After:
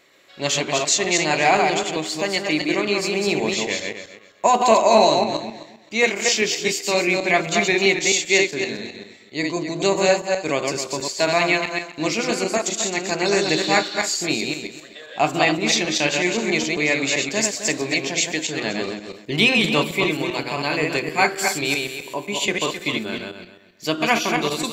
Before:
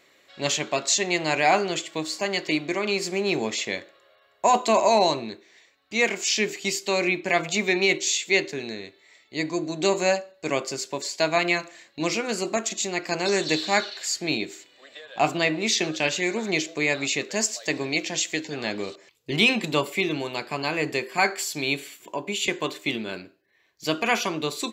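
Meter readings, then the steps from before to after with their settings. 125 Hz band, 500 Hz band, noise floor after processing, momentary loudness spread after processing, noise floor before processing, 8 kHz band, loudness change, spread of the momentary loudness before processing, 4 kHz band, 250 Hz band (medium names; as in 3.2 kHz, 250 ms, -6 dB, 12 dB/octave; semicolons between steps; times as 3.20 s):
+4.5 dB, +4.5 dB, -47 dBFS, 10 LU, -61 dBFS, +4.5 dB, +4.5 dB, 10 LU, +4.5 dB, +4.5 dB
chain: backward echo that repeats 131 ms, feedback 43%, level -3 dB; trim +2.5 dB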